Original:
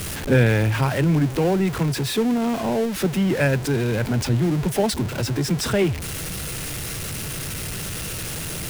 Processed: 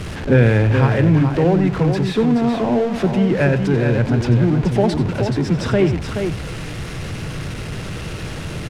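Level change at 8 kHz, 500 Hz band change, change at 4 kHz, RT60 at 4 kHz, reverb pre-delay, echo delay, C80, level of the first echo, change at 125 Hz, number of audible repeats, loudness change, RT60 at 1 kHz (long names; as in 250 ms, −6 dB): −10.0 dB, +4.5 dB, −2.5 dB, no reverb audible, no reverb audible, 91 ms, no reverb audible, −13.5 dB, +5.5 dB, 2, +5.0 dB, no reverb audible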